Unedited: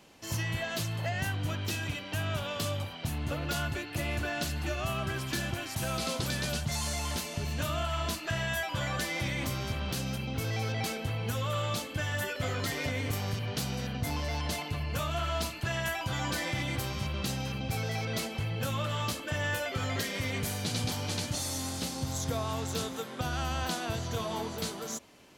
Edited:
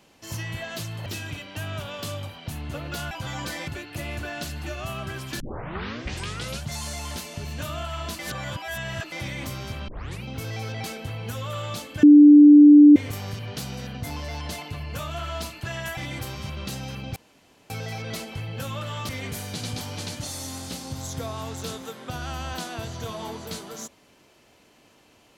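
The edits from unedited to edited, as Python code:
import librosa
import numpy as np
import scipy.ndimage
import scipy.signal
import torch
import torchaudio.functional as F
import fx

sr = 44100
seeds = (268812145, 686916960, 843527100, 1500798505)

y = fx.edit(x, sr, fx.cut(start_s=1.06, length_s=0.57),
    fx.tape_start(start_s=5.4, length_s=1.24),
    fx.reverse_span(start_s=8.19, length_s=0.93),
    fx.tape_start(start_s=9.88, length_s=0.35),
    fx.bleep(start_s=12.03, length_s=0.93, hz=294.0, db=-6.5),
    fx.move(start_s=15.97, length_s=0.57, to_s=3.68),
    fx.insert_room_tone(at_s=17.73, length_s=0.54),
    fx.cut(start_s=19.12, length_s=1.08), tone=tone)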